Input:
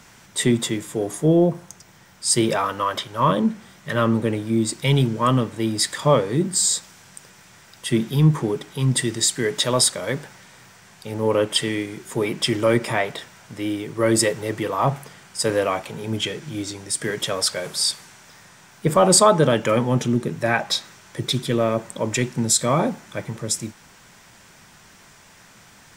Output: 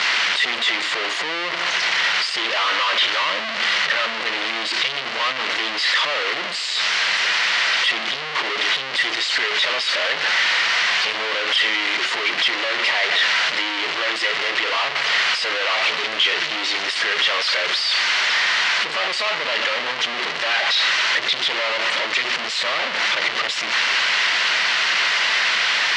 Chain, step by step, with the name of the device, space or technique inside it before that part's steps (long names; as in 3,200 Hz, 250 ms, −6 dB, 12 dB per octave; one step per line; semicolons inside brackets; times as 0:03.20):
home computer beeper (sign of each sample alone; loudspeaker in its box 800–4,700 Hz, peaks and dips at 820 Hz −5 dB, 2,000 Hz +6 dB, 2,900 Hz +6 dB, 4,300 Hz +4 dB)
level +4 dB